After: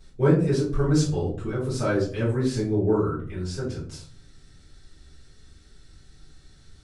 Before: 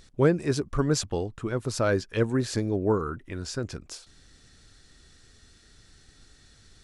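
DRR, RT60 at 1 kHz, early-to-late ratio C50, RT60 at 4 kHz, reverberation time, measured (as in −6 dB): −9.5 dB, 0.40 s, 5.5 dB, 0.25 s, 0.50 s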